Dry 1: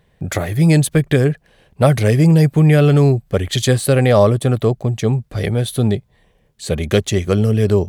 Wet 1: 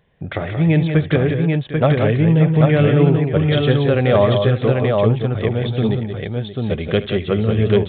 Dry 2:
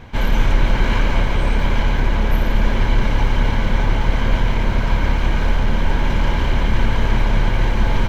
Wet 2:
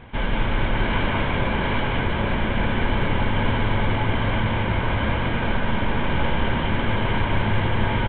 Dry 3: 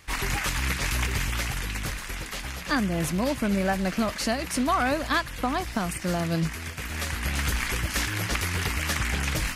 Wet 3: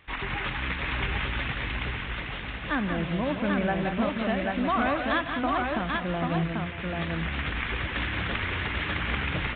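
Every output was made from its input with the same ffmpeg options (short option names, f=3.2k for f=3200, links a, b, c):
-filter_complex "[0:a]lowshelf=f=87:g=-5.5,asplit=2[a][b];[b]aecho=0:1:72|162|180|578|789:0.141|0.168|0.447|0.211|0.708[c];[a][c]amix=inputs=2:normalize=0,aresample=8000,aresample=44100,volume=-2.5dB"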